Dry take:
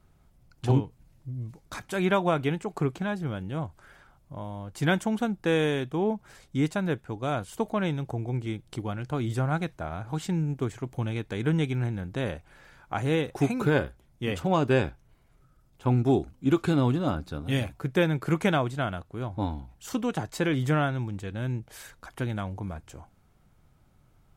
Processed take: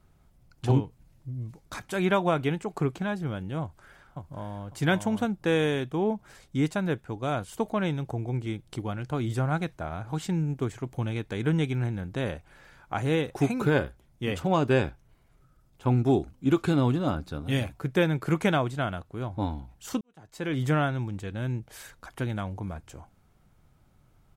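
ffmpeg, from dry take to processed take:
-filter_complex "[0:a]asplit=2[s0][s1];[s1]afade=t=in:st=3.61:d=0.01,afade=t=out:st=4.7:d=0.01,aecho=0:1:550|1100|1650:0.630957|0.126191|0.0252383[s2];[s0][s2]amix=inputs=2:normalize=0,asplit=2[s3][s4];[s3]atrim=end=20.01,asetpts=PTS-STARTPTS,afade=t=out:st=20.006:d=0.004:c=hsin[s5];[s4]atrim=start=20.01,asetpts=PTS-STARTPTS,afade=t=in:d=0.61:c=qua[s6];[s5][s6]concat=n=2:v=0:a=1"

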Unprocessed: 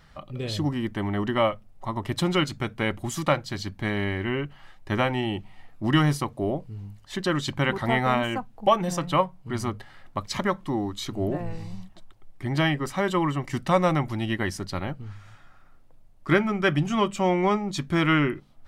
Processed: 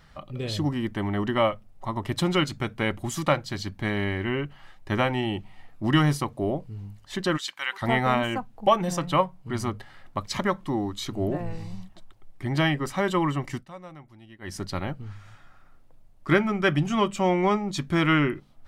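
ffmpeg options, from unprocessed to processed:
-filter_complex "[0:a]asplit=3[s0][s1][s2];[s0]afade=t=out:st=7.36:d=0.02[s3];[s1]highpass=1500,afade=t=in:st=7.36:d=0.02,afade=t=out:st=7.81:d=0.02[s4];[s2]afade=t=in:st=7.81:d=0.02[s5];[s3][s4][s5]amix=inputs=3:normalize=0,asplit=3[s6][s7][s8];[s6]atrim=end=13.66,asetpts=PTS-STARTPTS,afade=t=out:st=13.48:d=0.18:silence=0.0841395[s9];[s7]atrim=start=13.66:end=14.41,asetpts=PTS-STARTPTS,volume=0.0841[s10];[s8]atrim=start=14.41,asetpts=PTS-STARTPTS,afade=t=in:d=0.18:silence=0.0841395[s11];[s9][s10][s11]concat=n=3:v=0:a=1"

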